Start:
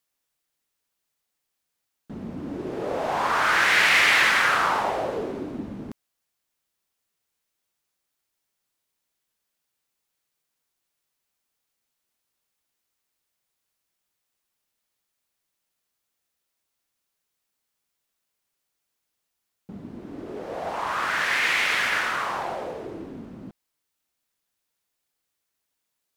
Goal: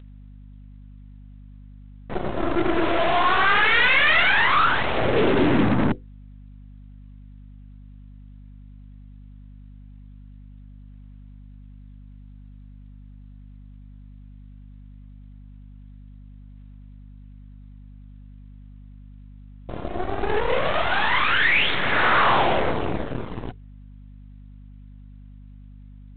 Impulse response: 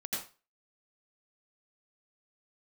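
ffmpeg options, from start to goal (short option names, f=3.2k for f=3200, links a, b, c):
-filter_complex "[0:a]bandreject=f=50:t=h:w=6,bandreject=f=100:t=h:w=6,bandreject=f=150:t=h:w=6,bandreject=f=200:t=h:w=6,bandreject=f=250:t=h:w=6,adynamicequalizer=threshold=0.001:dfrequency=120:dqfactor=4.4:tfrequency=120:tqfactor=4.4:attack=5:release=100:ratio=0.375:range=3:mode=boostabove:tftype=bell,asplit=2[a][b];[b]acompressor=threshold=-34dB:ratio=16,volume=1.5dB[c];[a][c]amix=inputs=2:normalize=0,aphaser=in_gain=1:out_gain=1:delay=3:decay=0.77:speed=0.18:type=sinusoidal,asoftclip=type=tanh:threshold=-13.5dB,aeval=exprs='0.211*(cos(1*acos(clip(val(0)/0.211,-1,1)))-cos(1*PI/2))+0.00133*(cos(4*acos(clip(val(0)/0.211,-1,1)))-cos(4*PI/2))+0.015*(cos(7*acos(clip(val(0)/0.211,-1,1)))-cos(7*PI/2))+0.0596*(cos(8*acos(clip(val(0)/0.211,-1,1)))-cos(8*PI/2))':c=same,aeval=exprs='val(0)+0.00794*(sin(2*PI*50*n/s)+sin(2*PI*2*50*n/s)/2+sin(2*PI*3*50*n/s)/3+sin(2*PI*4*50*n/s)/4+sin(2*PI*5*50*n/s)/5)':c=same" -ar 8000 -c:a adpcm_g726 -b:a 24k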